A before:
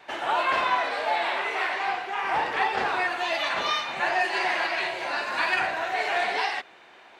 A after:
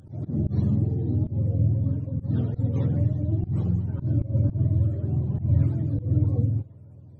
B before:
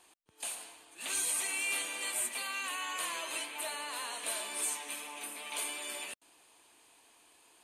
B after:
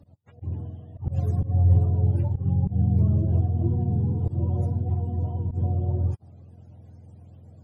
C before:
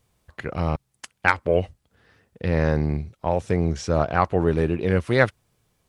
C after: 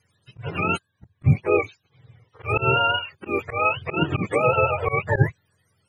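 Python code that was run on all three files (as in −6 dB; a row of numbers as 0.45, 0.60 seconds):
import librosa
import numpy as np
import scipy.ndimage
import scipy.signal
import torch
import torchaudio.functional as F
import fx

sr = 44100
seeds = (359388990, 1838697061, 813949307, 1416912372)

y = fx.octave_mirror(x, sr, pivot_hz=460.0)
y = fx.graphic_eq_10(y, sr, hz=(125, 250, 8000), db=(3, -7, 10))
y = fx.auto_swell(y, sr, attack_ms=124.0)
y = y * 10.0 ** (-24 / 20.0) / np.sqrt(np.mean(np.square(y)))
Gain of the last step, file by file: +1.0, +16.5, +4.0 decibels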